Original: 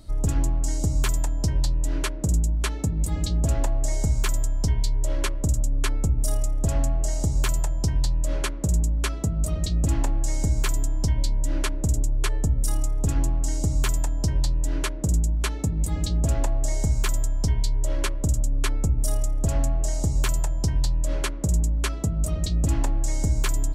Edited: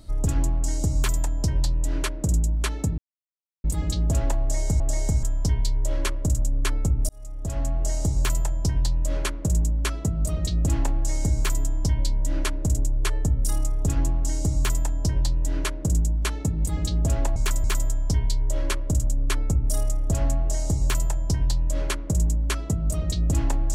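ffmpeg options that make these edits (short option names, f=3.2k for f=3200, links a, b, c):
-filter_complex "[0:a]asplit=7[a][b][c][d][e][f][g];[a]atrim=end=2.98,asetpts=PTS-STARTPTS,afade=t=out:st=2.976:d=0.004:c=hsin,apad=pad_dur=0.66[h];[b]atrim=start=2.98:end=4.142,asetpts=PTS-STARTPTS,afade=t=in:d=0.004:c=hsin[i];[c]atrim=start=16.548:end=16.982[j];[d]atrim=start=4.418:end=6.28,asetpts=PTS-STARTPTS,afade=t=out:st=1.858:d=0.004:c=hsin[k];[e]atrim=start=6.28:end=16.552,asetpts=PTS-STARTPTS,afade=t=in:d=0.78[l];[f]atrim=start=4.138:end=4.422[m];[g]atrim=start=16.978[n];[h][i]concat=n=2:v=0:a=1[o];[o][j]acrossfade=d=0.004:c1=hsin:c2=hsin[p];[k][l]concat=n=2:v=0:a=1[q];[p][q]acrossfade=d=0.004:c1=hsin:c2=hsin[r];[r][m]acrossfade=d=0.004:c1=hsin:c2=hsin[s];[s][n]acrossfade=d=0.004:c1=hsin:c2=hsin"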